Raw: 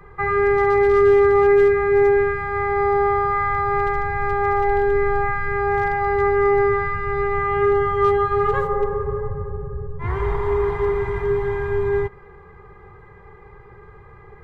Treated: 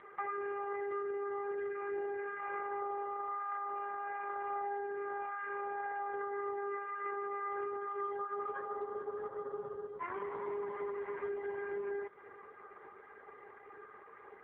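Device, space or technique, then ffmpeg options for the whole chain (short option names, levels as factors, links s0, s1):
voicemail: -af "highpass=430,lowpass=2700,acompressor=threshold=0.0224:ratio=10,volume=0.75" -ar 8000 -c:a libopencore_amrnb -b:a 4750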